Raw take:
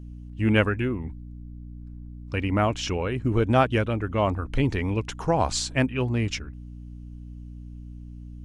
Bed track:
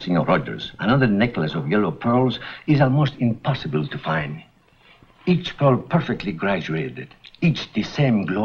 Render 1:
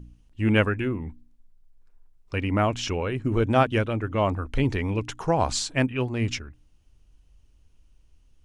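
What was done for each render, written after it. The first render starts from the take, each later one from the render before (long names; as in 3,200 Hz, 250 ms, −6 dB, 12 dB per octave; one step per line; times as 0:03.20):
hum removal 60 Hz, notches 5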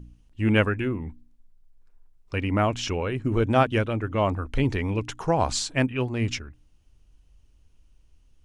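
no processing that can be heard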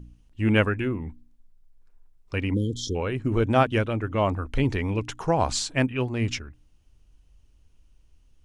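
0:02.54–0:02.95: time-frequency box erased 530–3,100 Hz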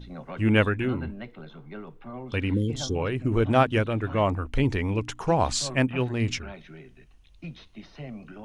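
mix in bed track −21 dB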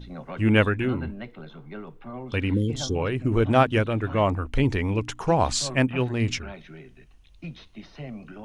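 level +1.5 dB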